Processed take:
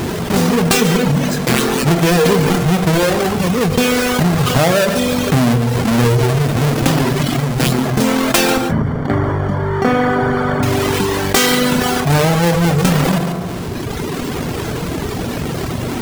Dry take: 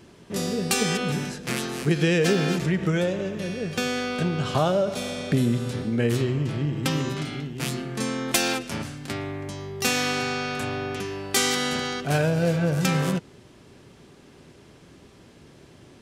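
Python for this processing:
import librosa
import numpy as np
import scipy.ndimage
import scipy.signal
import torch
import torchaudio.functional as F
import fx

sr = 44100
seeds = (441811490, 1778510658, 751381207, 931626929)

y = fx.halfwave_hold(x, sr)
y = fx.dereverb_blind(y, sr, rt60_s=1.6)
y = fx.savgol(y, sr, points=41, at=(8.59, 10.63))
y = y + 10.0 ** (-17.0 / 20.0) * np.pad(y, (int(141 * sr / 1000.0), 0))[:len(y)]
y = fx.rev_fdn(y, sr, rt60_s=0.84, lf_ratio=1.0, hf_ratio=0.55, size_ms=13.0, drr_db=11.5)
y = fx.env_flatten(y, sr, amount_pct=70)
y = y * librosa.db_to_amplitude(3.0)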